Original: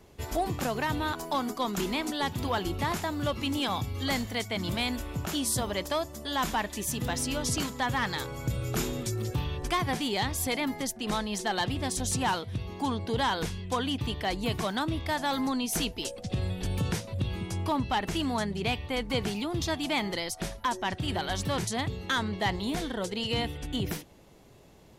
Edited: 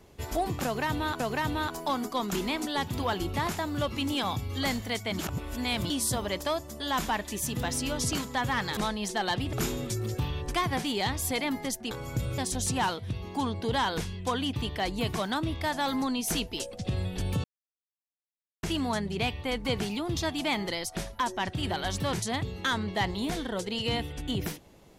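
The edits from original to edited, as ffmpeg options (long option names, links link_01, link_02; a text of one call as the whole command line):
ffmpeg -i in.wav -filter_complex "[0:a]asplit=10[link_01][link_02][link_03][link_04][link_05][link_06][link_07][link_08][link_09][link_10];[link_01]atrim=end=1.202[link_11];[link_02]atrim=start=0.648:end=4.642[link_12];[link_03]atrim=start=4.638:end=5.352,asetpts=PTS-STARTPTS,areverse[link_13];[link_04]atrim=start=5.348:end=8.222[link_14];[link_05]atrim=start=11.068:end=11.832[link_15];[link_06]atrim=start=8.688:end=11.072[link_16];[link_07]atrim=start=8.218:end=8.692[link_17];[link_08]atrim=start=11.828:end=16.89,asetpts=PTS-STARTPTS,afade=type=out:start_time=5.058:duration=0.004:curve=hsin[link_18];[link_09]atrim=start=16.89:end=18.08,asetpts=PTS-STARTPTS,volume=0[link_19];[link_10]atrim=start=18.08,asetpts=PTS-STARTPTS,afade=type=in:duration=0.004:curve=hsin[link_20];[link_11][link_12]acrossfade=duration=0.004:curve1=hsin:curve2=hsin[link_21];[link_21][link_13]acrossfade=duration=0.004:curve1=hsin:curve2=hsin[link_22];[link_22][link_14]acrossfade=duration=0.004:curve1=hsin:curve2=hsin[link_23];[link_23][link_15]acrossfade=duration=0.004:curve1=hsin:curve2=hsin[link_24];[link_24][link_16]acrossfade=duration=0.004:curve1=hsin:curve2=hsin[link_25];[link_25][link_17]acrossfade=duration=0.004:curve1=hsin:curve2=hsin[link_26];[link_18][link_19][link_20]concat=n=3:v=0:a=1[link_27];[link_26][link_27]acrossfade=duration=0.004:curve1=hsin:curve2=hsin" out.wav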